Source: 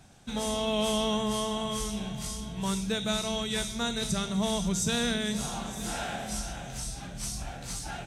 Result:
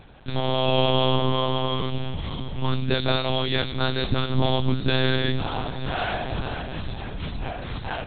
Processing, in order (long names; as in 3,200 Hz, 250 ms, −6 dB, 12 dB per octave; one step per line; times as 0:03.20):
one-pitch LPC vocoder at 8 kHz 130 Hz
level +8 dB